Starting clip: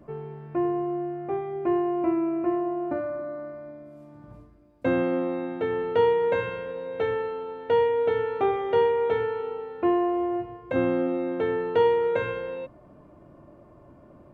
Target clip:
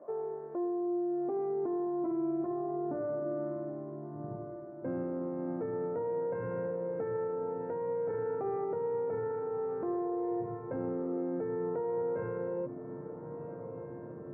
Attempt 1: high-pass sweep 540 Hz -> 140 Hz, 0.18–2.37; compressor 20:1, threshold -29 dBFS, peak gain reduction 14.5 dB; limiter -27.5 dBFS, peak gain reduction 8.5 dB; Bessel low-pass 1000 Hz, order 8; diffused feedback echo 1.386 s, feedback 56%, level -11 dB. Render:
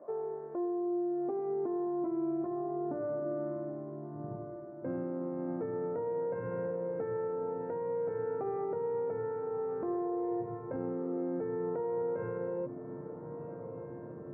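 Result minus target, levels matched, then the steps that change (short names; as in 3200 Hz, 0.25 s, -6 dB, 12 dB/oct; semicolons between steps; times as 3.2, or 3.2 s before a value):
compressor: peak gain reduction +14.5 dB
remove: compressor 20:1, threshold -29 dBFS, peak gain reduction 14.5 dB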